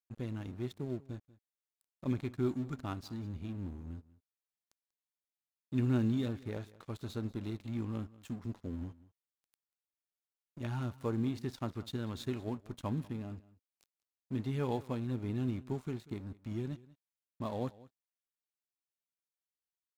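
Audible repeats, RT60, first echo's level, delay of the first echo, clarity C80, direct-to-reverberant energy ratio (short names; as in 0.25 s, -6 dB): 1, none, -20.5 dB, 0.19 s, none, none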